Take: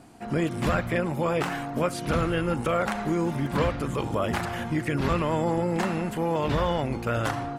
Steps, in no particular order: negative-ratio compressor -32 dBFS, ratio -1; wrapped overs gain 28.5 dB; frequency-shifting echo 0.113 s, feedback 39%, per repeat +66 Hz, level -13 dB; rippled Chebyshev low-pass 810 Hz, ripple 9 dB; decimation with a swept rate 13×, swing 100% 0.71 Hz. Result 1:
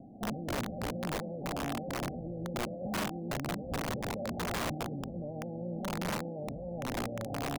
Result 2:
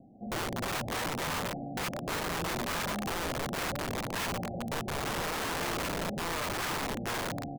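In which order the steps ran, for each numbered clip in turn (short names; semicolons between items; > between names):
decimation with a swept rate > negative-ratio compressor > frequency-shifting echo > rippled Chebyshev low-pass > wrapped overs; frequency-shifting echo > decimation with a swept rate > rippled Chebyshev low-pass > wrapped overs > negative-ratio compressor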